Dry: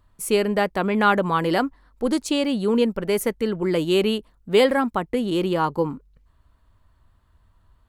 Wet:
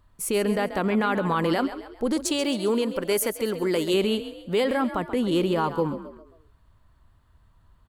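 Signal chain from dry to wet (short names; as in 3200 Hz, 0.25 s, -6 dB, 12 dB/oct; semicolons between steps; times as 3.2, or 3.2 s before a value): 2.25–3.94 tone controls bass -8 dB, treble +6 dB; limiter -15.5 dBFS, peak gain reduction 9 dB; frequency-shifting echo 0.134 s, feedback 41%, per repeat +40 Hz, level -12 dB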